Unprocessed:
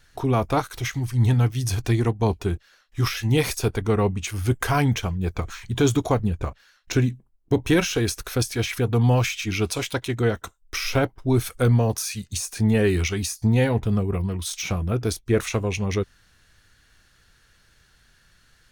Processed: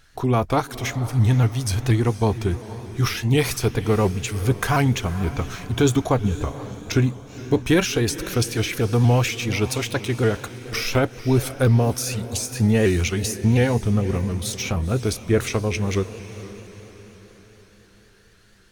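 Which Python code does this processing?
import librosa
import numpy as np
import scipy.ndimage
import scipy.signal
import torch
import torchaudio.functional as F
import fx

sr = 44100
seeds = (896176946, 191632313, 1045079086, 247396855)

y = fx.echo_diffused(x, sr, ms=488, feedback_pct=50, wet_db=-14.0)
y = fx.vibrato_shape(y, sr, shape='saw_up', rate_hz=4.2, depth_cents=100.0)
y = F.gain(torch.from_numpy(y), 1.5).numpy()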